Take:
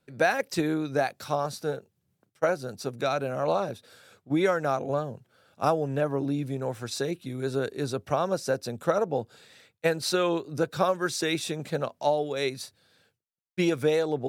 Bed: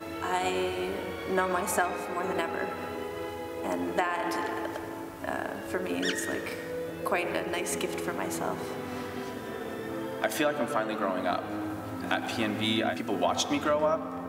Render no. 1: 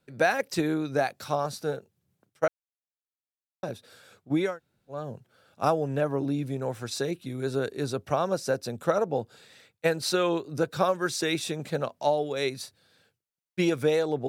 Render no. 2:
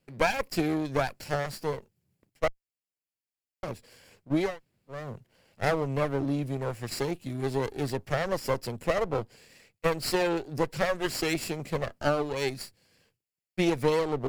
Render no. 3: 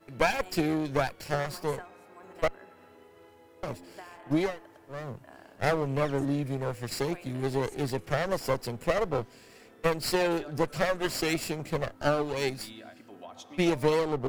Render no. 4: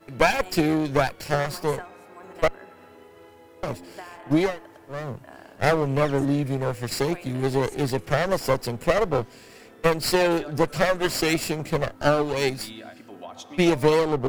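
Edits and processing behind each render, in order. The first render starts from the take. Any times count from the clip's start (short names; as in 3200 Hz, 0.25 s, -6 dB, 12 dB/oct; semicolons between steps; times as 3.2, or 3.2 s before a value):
2.48–3.63 mute; 4.48–4.99 room tone, crossfade 0.24 s
minimum comb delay 0.41 ms
add bed -19 dB
gain +6 dB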